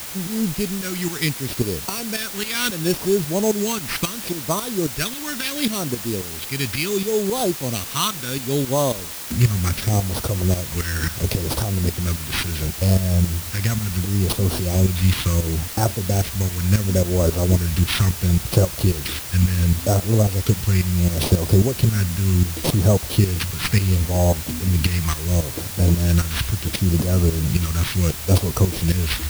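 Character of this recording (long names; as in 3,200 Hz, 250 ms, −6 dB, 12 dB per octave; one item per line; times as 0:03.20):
tremolo saw up 3.7 Hz, depth 75%
aliases and images of a low sample rate 7,100 Hz
phaser sweep stages 2, 0.71 Hz, lowest notch 550–2,000 Hz
a quantiser's noise floor 6 bits, dither triangular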